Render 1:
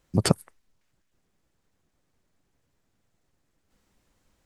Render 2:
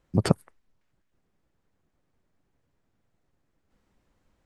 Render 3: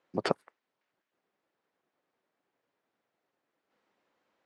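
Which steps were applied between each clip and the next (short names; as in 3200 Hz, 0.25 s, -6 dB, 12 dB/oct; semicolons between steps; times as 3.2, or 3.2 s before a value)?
high shelf 3500 Hz -11 dB
BPF 410–4400 Hz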